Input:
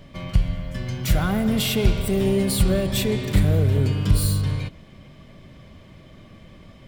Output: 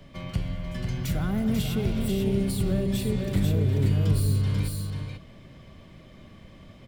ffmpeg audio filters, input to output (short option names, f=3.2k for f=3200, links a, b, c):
-filter_complex "[0:a]acrossover=split=100[a][b];[a]volume=26dB,asoftclip=hard,volume=-26dB[c];[c][b]amix=inputs=2:normalize=0,aecho=1:1:489:0.531,acrossover=split=370[d][e];[e]acompressor=threshold=-34dB:ratio=3[f];[d][f]amix=inputs=2:normalize=0,volume=-3.5dB"